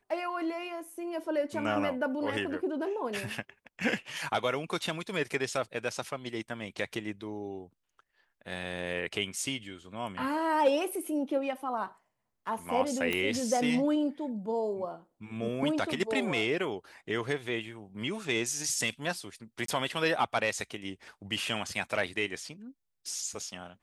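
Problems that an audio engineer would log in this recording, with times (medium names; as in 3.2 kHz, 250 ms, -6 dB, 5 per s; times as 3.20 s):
13.13 s: pop -16 dBFS
19.66–19.68 s: dropout 23 ms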